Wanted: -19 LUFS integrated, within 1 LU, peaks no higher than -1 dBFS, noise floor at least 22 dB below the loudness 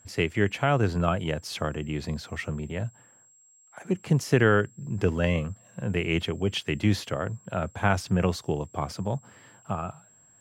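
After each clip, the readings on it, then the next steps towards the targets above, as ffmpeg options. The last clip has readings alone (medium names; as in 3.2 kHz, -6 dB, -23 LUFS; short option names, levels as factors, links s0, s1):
steady tone 7.6 kHz; tone level -56 dBFS; loudness -28.0 LUFS; peak level -9.0 dBFS; loudness target -19.0 LUFS
-> -af "bandreject=f=7600:w=30"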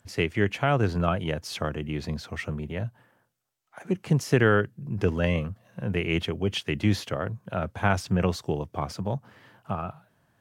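steady tone not found; loudness -28.0 LUFS; peak level -9.0 dBFS; loudness target -19.0 LUFS
-> -af "volume=2.82,alimiter=limit=0.891:level=0:latency=1"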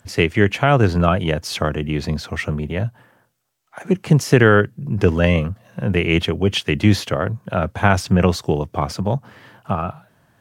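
loudness -19.0 LUFS; peak level -1.0 dBFS; noise floor -60 dBFS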